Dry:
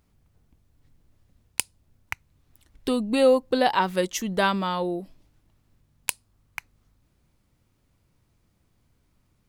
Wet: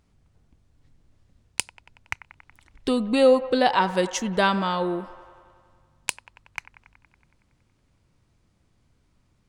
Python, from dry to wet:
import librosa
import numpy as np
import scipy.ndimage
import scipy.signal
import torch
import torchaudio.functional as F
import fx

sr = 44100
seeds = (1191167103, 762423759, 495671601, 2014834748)

y = scipy.signal.savgol_filter(x, 9, 4, mode='constant')
y = fx.echo_wet_bandpass(y, sr, ms=93, feedback_pct=72, hz=1100.0, wet_db=-14.5)
y = y * 10.0 ** (1.5 / 20.0)